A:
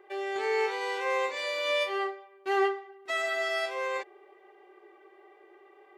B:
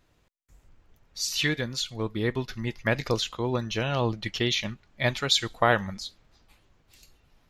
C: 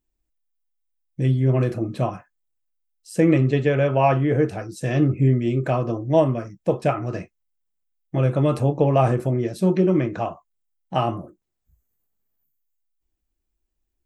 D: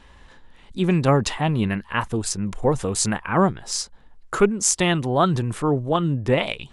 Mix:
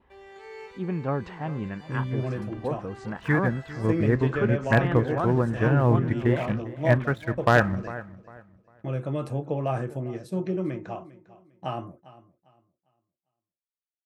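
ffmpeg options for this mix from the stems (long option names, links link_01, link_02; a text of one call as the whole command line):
ffmpeg -i stem1.wav -i stem2.wav -i stem3.wav -i stem4.wav -filter_complex "[0:a]volume=-14.5dB,asplit=2[link_01][link_02];[link_02]volume=-6dB[link_03];[1:a]lowpass=frequency=1800:width=0.5412,lowpass=frequency=1800:width=1.3066,lowshelf=frequency=290:gain=9.5,aeval=exprs='sgn(val(0))*max(abs(val(0))-0.00422,0)':channel_layout=same,adelay=1850,volume=0.5dB,asplit=2[link_04][link_05];[link_05]volume=-17.5dB[link_06];[2:a]agate=range=-33dB:threshold=-31dB:ratio=3:detection=peak,adelay=700,volume=-10dB,asplit=2[link_07][link_08];[link_08]volume=-18.5dB[link_09];[3:a]lowpass=1600,volume=-10dB,asplit=3[link_10][link_11][link_12];[link_11]volume=-16.5dB[link_13];[link_12]apad=whole_len=263588[link_14];[link_01][link_14]sidechaincompress=threshold=-46dB:ratio=3:attack=16:release=1240[link_15];[link_03][link_06][link_09][link_13]amix=inputs=4:normalize=0,aecho=0:1:401|802|1203|1604:1|0.27|0.0729|0.0197[link_16];[link_15][link_04][link_07][link_10][link_16]amix=inputs=5:normalize=0,highpass=58,adynamicequalizer=threshold=0.00355:dfrequency=1600:dqfactor=5:tfrequency=1600:tqfactor=5:attack=5:release=100:ratio=0.375:range=3.5:mode=boostabove:tftype=bell,aeval=exprs='0.398*(abs(mod(val(0)/0.398+3,4)-2)-1)':channel_layout=same" out.wav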